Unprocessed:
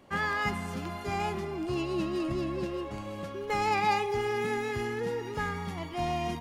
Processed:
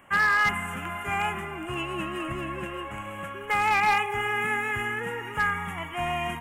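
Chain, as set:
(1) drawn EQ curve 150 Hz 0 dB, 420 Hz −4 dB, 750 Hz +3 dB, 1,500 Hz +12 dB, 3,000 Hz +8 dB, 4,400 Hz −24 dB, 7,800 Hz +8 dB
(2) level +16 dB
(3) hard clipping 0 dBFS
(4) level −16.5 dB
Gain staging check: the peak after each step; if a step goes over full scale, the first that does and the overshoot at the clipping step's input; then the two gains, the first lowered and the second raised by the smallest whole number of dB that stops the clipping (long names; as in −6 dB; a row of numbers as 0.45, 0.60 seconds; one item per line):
−9.5, +6.5, 0.0, −16.5 dBFS
step 2, 6.5 dB
step 2 +9 dB, step 4 −9.5 dB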